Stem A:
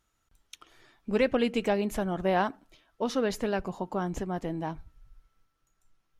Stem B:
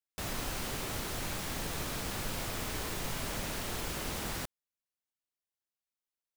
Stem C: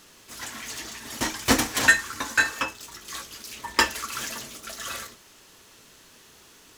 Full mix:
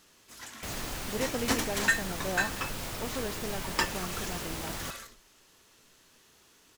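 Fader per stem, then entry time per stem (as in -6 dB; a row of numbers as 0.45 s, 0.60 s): -9.0 dB, -0.5 dB, -8.5 dB; 0.00 s, 0.45 s, 0.00 s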